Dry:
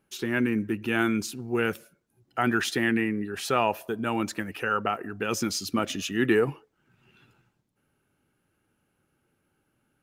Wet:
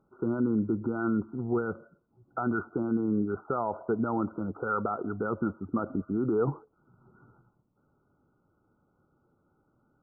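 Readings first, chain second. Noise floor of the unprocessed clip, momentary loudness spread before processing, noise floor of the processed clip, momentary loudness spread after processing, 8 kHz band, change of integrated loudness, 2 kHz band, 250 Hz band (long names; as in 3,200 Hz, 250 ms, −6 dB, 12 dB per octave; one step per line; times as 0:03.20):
−75 dBFS, 6 LU, −72 dBFS, 6 LU, below −40 dB, −3.5 dB, −12.0 dB, −1.0 dB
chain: brickwall limiter −22 dBFS, peak gain reduction 11 dB
linear-phase brick-wall low-pass 1,500 Hz
level +3.5 dB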